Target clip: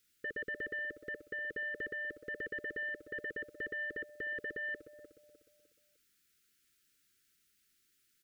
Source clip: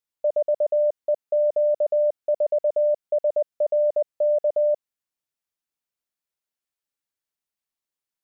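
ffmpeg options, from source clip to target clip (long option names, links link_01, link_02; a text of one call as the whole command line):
ffmpeg -i in.wav -af "aecho=1:1:303|606|909|1212:0.224|0.0873|0.0341|0.0133,asoftclip=type=tanh:threshold=-15.5dB,alimiter=level_in=1.5dB:limit=-24dB:level=0:latency=1:release=17,volume=-1.5dB,asuperstop=centerf=780:order=12:qfactor=0.94,equalizer=frequency=510:width_type=o:width=0.38:gain=-9,volume=15dB" out.wav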